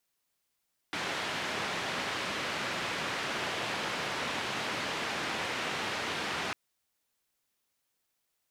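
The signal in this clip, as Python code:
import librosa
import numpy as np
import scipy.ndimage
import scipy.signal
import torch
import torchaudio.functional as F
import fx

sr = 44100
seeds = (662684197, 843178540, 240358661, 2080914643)

y = fx.band_noise(sr, seeds[0], length_s=5.6, low_hz=120.0, high_hz=2700.0, level_db=-34.5)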